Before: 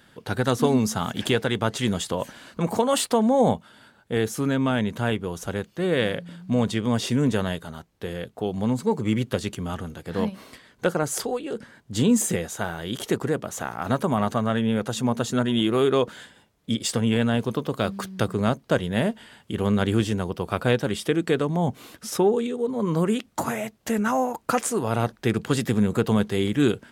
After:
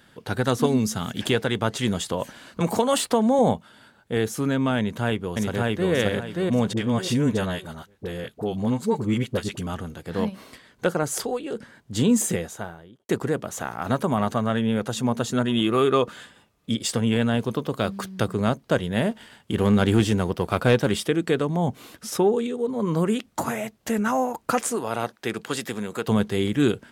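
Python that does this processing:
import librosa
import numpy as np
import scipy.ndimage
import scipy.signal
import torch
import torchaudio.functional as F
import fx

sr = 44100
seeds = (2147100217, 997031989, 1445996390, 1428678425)

y = fx.peak_eq(x, sr, hz=890.0, db=-7.0, octaves=1.3, at=(0.66, 1.21))
y = fx.band_squash(y, sr, depth_pct=40, at=(2.6, 3.39))
y = fx.echo_throw(y, sr, start_s=4.78, length_s=1.13, ms=580, feedback_pct=30, wet_db=-0.5)
y = fx.dispersion(y, sr, late='highs', ms=43.0, hz=710.0, at=(6.73, 9.67))
y = fx.studio_fade_out(y, sr, start_s=12.29, length_s=0.8)
y = fx.small_body(y, sr, hz=(1200.0, 2600.0), ring_ms=45, db=10, at=(15.47, 16.71))
y = fx.leveller(y, sr, passes=1, at=(19.11, 21.04))
y = fx.highpass(y, sr, hz=fx.line((24.75, 360.0), (26.06, 770.0)), slope=6, at=(24.75, 26.06), fade=0.02)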